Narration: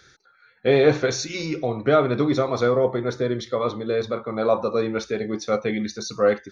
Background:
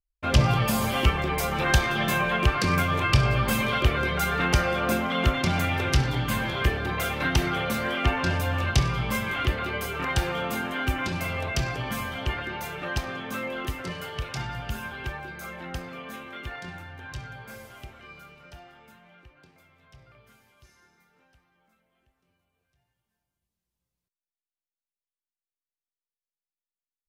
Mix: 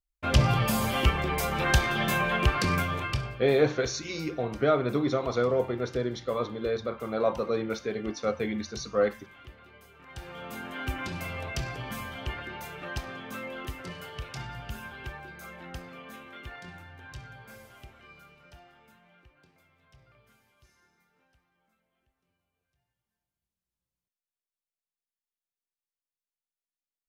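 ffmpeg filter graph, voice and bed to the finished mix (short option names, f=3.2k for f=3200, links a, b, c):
-filter_complex "[0:a]adelay=2750,volume=-6dB[a];[1:a]volume=15.5dB,afade=t=out:st=2.62:d=0.8:silence=0.0841395,afade=t=in:st=10.05:d=0.87:silence=0.133352[b];[a][b]amix=inputs=2:normalize=0"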